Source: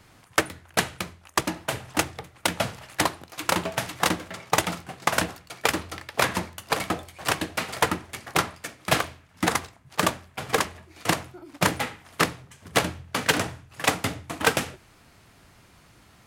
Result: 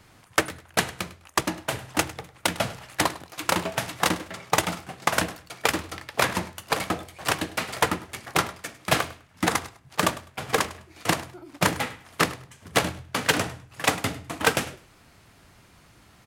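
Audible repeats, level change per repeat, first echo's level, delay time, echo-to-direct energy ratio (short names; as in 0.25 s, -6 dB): 2, -14.0 dB, -18.0 dB, 0.102 s, -18.0 dB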